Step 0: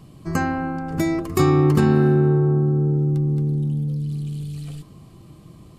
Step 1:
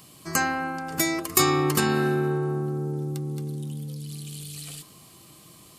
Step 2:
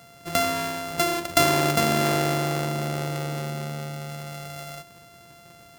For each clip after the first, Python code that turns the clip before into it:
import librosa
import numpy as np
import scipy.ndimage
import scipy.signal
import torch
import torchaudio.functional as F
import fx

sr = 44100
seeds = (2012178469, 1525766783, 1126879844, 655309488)

y1 = fx.tilt_eq(x, sr, slope=4.0)
y2 = np.r_[np.sort(y1[:len(y1) // 64 * 64].reshape(-1, 64), axis=1).ravel(), y1[len(y1) // 64 * 64:]]
y2 = y2 * librosa.db_to_amplitude(1.0)